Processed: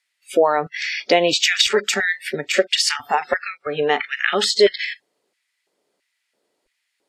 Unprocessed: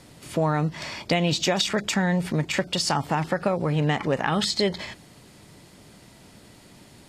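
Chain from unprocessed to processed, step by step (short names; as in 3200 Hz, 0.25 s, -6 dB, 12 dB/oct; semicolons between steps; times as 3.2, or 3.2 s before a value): LFO high-pass square 1.5 Hz 440–2000 Hz; spectral noise reduction 28 dB; gain +6 dB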